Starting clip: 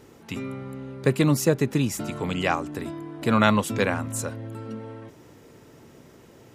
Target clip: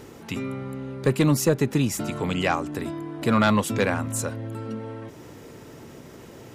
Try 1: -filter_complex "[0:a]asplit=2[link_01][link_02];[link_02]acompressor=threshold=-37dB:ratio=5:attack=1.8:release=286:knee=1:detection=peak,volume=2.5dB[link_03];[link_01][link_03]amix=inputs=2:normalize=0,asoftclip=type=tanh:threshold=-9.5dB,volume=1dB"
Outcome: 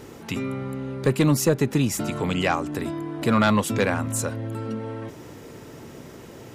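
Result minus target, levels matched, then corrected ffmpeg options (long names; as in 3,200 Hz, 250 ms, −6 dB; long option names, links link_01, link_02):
downward compressor: peak gain reduction −9 dB
-filter_complex "[0:a]asplit=2[link_01][link_02];[link_02]acompressor=threshold=-48dB:ratio=5:attack=1.8:release=286:knee=1:detection=peak,volume=2.5dB[link_03];[link_01][link_03]amix=inputs=2:normalize=0,asoftclip=type=tanh:threshold=-9.5dB,volume=1dB"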